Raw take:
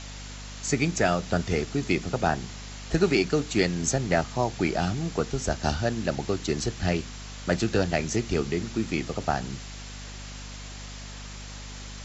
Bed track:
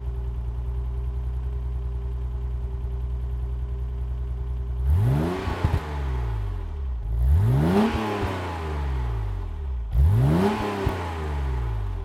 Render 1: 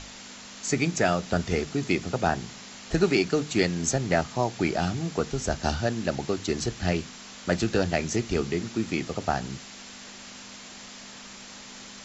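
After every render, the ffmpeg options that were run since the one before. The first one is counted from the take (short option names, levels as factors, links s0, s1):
-af "bandreject=f=50:t=h:w=6,bandreject=f=100:t=h:w=6,bandreject=f=150:t=h:w=6"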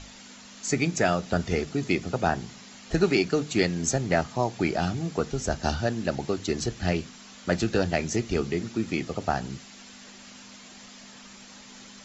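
-af "afftdn=nr=6:nf=-44"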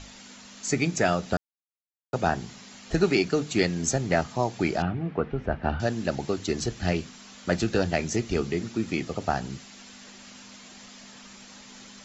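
-filter_complex "[0:a]asettb=1/sr,asplit=3[s0][s1][s2];[s0]atrim=end=4.824[s3];[s1]atrim=start=4.82:end=5.8,asetpts=PTS-STARTPTS,afade=t=in:d=0.004:c=qsin,afade=t=out:st=0.976:d=0.004:c=qsin,lowpass=f=2500:w=0.5412,lowpass=f=2500:w=1.3066[s4];[s2]atrim=start=5.796[s5];[s3][s4]acrossfade=d=0.004:c1=hsin:c2=qsin[s6];[s6][s5]acrossfade=d=0.004:c1=qsin:c2=hsin,asplit=3[s7][s8][s9];[s7]atrim=end=1.37,asetpts=PTS-STARTPTS,afade=t=out:st=1.366:d=0.004:c=hsin[s10];[s8]atrim=start=1.37:end=2.13,asetpts=PTS-STARTPTS,volume=0[s11];[s9]atrim=start=2.13,asetpts=PTS-STARTPTS,afade=t=in:d=0.004:c=hsin[s12];[s10][s11][s12]concat=n=3:v=0:a=1"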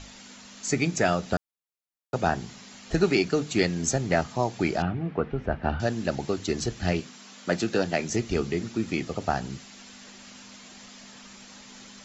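-filter_complex "[0:a]asettb=1/sr,asplit=3[s0][s1][s2];[s0]atrim=end=7.004[s3];[s1]atrim=start=7:end=8.1,asetpts=PTS-STARTPTS,afade=t=in:d=0.004:c=qsin,afade=t=out:st=1.096:d=0.004:c=qsin,highpass=160[s4];[s2]atrim=start=8.096[s5];[s3][s4]acrossfade=d=0.004:c1=hsin:c2=qsin[s6];[s6][s5]acrossfade=d=0.004:c1=qsin:c2=hsin"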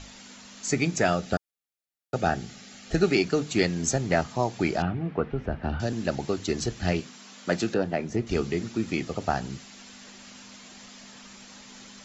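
-filter_complex "[0:a]asettb=1/sr,asplit=3[s0][s1][s2];[s0]atrim=end=1.134[s3];[s1]atrim=start=1.13:end=3.14,asetpts=PTS-STARTPTS,afade=t=in:d=0.004:c=qsin,afade=t=out:st=2.006:d=0.004:c=qsin,asuperstop=centerf=1000:order=4:qfactor=4.3[s4];[s2]atrim=start=3.136[s5];[s3][s4]acrossfade=d=0.004:c1=hsin:c2=qsin[s6];[s6][s5]acrossfade=d=0.004:c1=qsin:c2=hsin,asettb=1/sr,asplit=3[s7][s8][s9];[s7]atrim=end=5.314[s10];[s8]atrim=start=5.31:end=5.93,asetpts=PTS-STARTPTS,afade=t=in:d=0.004:c=qsin,afade=t=out:st=0.616:d=0.004:c=qsin,acrossover=split=440|3000[s11][s12][s13];[s12]acompressor=threshold=0.0282:ratio=6:attack=3.2:release=140:knee=2.83:detection=peak[s14];[s11][s14][s13]amix=inputs=3:normalize=0[s15];[s9]atrim=start=5.926[s16];[s10][s15]acrossfade=d=0.004:c1=hsin:c2=qsin[s17];[s17][s16]acrossfade=d=0.004:c1=qsin:c2=hsin,asettb=1/sr,asplit=3[s18][s19][s20];[s18]atrim=end=7.744[s21];[s19]atrim=start=7.74:end=8.27,asetpts=PTS-STARTPTS,afade=t=in:d=0.004:c=qsin,afade=t=out:st=0.526:d=0.004:c=qsin,lowpass=f=1200:p=1[s22];[s20]atrim=start=8.266[s23];[s21][s22]acrossfade=d=0.004:c1=hsin:c2=qsin[s24];[s24][s23]acrossfade=d=0.004:c1=qsin:c2=hsin"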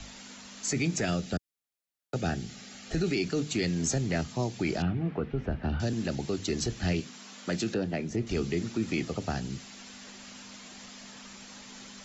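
-filter_complex "[0:a]acrossover=split=100|440|1900[s0][s1][s2][s3];[s2]acompressor=threshold=0.01:ratio=4[s4];[s0][s1][s4][s3]amix=inputs=4:normalize=0,alimiter=limit=0.1:level=0:latency=1:release=13"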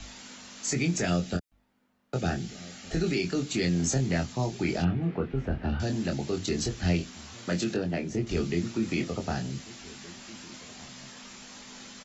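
-filter_complex "[0:a]asplit=2[s0][s1];[s1]adelay=23,volume=0.562[s2];[s0][s2]amix=inputs=2:normalize=0,asplit=2[s3][s4];[s4]adelay=1516,volume=0.1,highshelf=f=4000:g=-34.1[s5];[s3][s5]amix=inputs=2:normalize=0"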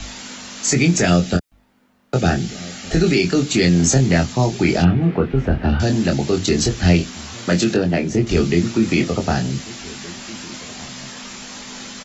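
-af "volume=3.98"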